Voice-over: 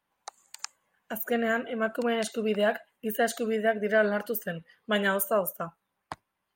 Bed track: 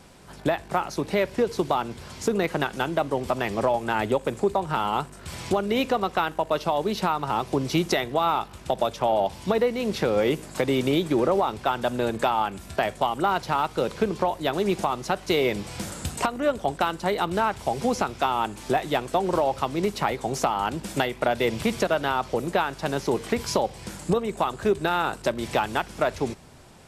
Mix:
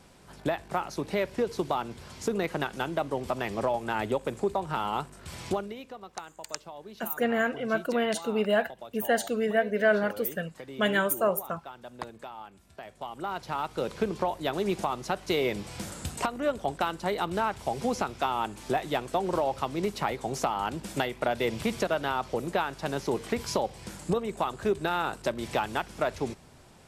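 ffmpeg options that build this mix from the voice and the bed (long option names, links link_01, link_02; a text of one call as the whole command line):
ffmpeg -i stem1.wav -i stem2.wav -filter_complex "[0:a]adelay=5900,volume=0.5dB[link_01];[1:a]volume=10dB,afade=type=out:start_time=5.52:duration=0.24:silence=0.188365,afade=type=in:start_time=12.85:duration=1.15:silence=0.177828[link_02];[link_01][link_02]amix=inputs=2:normalize=0" out.wav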